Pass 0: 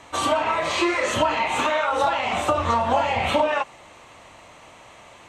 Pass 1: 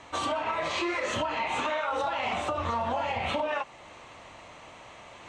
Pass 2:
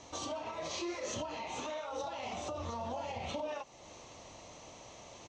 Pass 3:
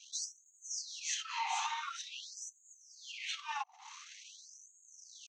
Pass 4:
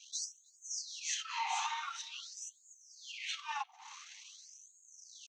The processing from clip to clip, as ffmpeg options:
ffmpeg -i in.wav -af "lowpass=6800,alimiter=limit=-18dB:level=0:latency=1:release=274,areverse,acompressor=mode=upward:threshold=-41dB:ratio=2.5,areverse,volume=-2.5dB" out.wav
ffmpeg -i in.wav -af "alimiter=level_in=2.5dB:limit=-24dB:level=0:latency=1:release=284,volume=-2.5dB,firequalizer=gain_entry='entry(490,0);entry(1500,-11);entry(6000,10);entry(9200,-11)':delay=0.05:min_phase=1,volume=-1.5dB" out.wav
ffmpeg -i in.wav -af "anlmdn=0.001,highpass=frequency=290:width_type=q:width=3.6,afftfilt=real='re*gte(b*sr/1024,710*pow(6500/710,0.5+0.5*sin(2*PI*0.47*pts/sr)))':imag='im*gte(b*sr/1024,710*pow(6500/710,0.5+0.5*sin(2*PI*0.47*pts/sr)))':win_size=1024:overlap=0.75,volume=6.5dB" out.wav
ffmpeg -i in.wav -filter_complex "[0:a]asplit=2[link_01][link_02];[link_02]adelay=310,highpass=300,lowpass=3400,asoftclip=type=hard:threshold=-33dB,volume=-23dB[link_03];[link_01][link_03]amix=inputs=2:normalize=0" out.wav

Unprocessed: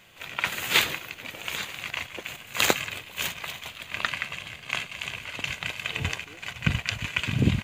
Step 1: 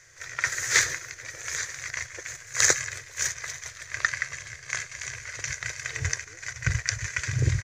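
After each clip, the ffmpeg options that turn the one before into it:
ffmpeg -i in.wav -af "firequalizer=gain_entry='entry(130,0);entry(200,-29);entry(330,-8);entry(480,-4);entry(810,-13);entry(1800,6);entry(2800,-18);entry(5800,14);entry(8300,-1);entry(14000,-15)':delay=0.05:min_phase=1,volume=1.5dB" out.wav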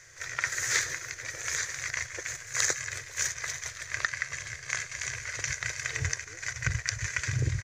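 ffmpeg -i in.wav -af "acompressor=threshold=-29dB:ratio=2.5,volume=1.5dB" out.wav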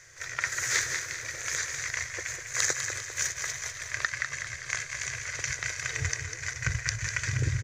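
ffmpeg -i in.wav -af "aecho=1:1:199|398|597|796|995:0.398|0.187|0.0879|0.0413|0.0194" out.wav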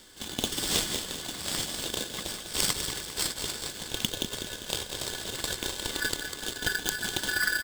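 ffmpeg -i in.wav -af "aeval=exprs='val(0)*sgn(sin(2*PI*1600*n/s))':channel_layout=same" out.wav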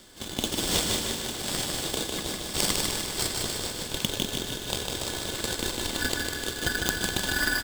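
ffmpeg -i in.wav -filter_complex "[0:a]asplit=2[link_01][link_02];[link_02]acrusher=samples=25:mix=1:aa=0.000001,volume=-8.5dB[link_03];[link_01][link_03]amix=inputs=2:normalize=0,aecho=1:1:152|304|456|608|760|912|1064:0.631|0.347|0.191|0.105|0.0577|0.0318|0.0175" out.wav

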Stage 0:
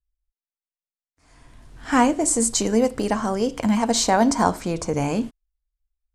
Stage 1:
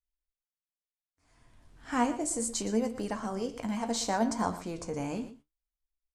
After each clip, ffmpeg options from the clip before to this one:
ffmpeg -i in.wav -af "flanger=delay=8.8:depth=8.5:regen=56:speed=0.7:shape=sinusoidal,aecho=1:1:119:0.2,volume=-7.5dB" out.wav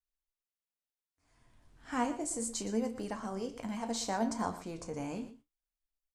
ffmpeg -i in.wav -filter_complex "[0:a]asplit=2[link_01][link_02];[link_02]adelay=31,volume=-14dB[link_03];[link_01][link_03]amix=inputs=2:normalize=0,volume=-4.5dB" out.wav

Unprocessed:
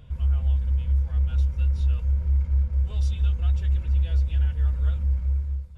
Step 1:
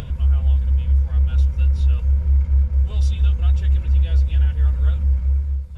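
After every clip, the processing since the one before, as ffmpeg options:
ffmpeg -i in.wav -af "acompressor=mode=upward:threshold=-26dB:ratio=2.5,volume=5.5dB" out.wav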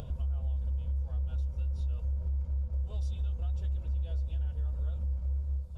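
ffmpeg -i in.wav -af "equalizer=frequency=630:width_type=o:width=0.9:gain=7,alimiter=limit=-20dB:level=0:latency=1:release=372,equalizer=frequency=2000:width_type=o:width=0.94:gain=-11.5,volume=-6.5dB" out.wav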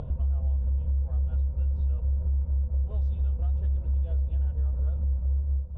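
ffmpeg -i in.wav -af "adynamicsmooth=sensitivity=4.5:basefreq=1200,volume=6dB" out.wav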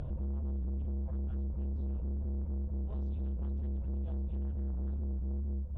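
ffmpeg -i in.wav -af "asoftclip=type=tanh:threshold=-33dB" out.wav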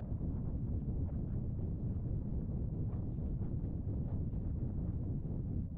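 ffmpeg -i in.wav -af "adynamicsmooth=sensitivity=8:basefreq=650,afreqshift=23,afftfilt=real='hypot(re,im)*cos(2*PI*random(0))':imag='hypot(re,im)*sin(2*PI*random(1))':win_size=512:overlap=0.75,volume=3dB" out.wav

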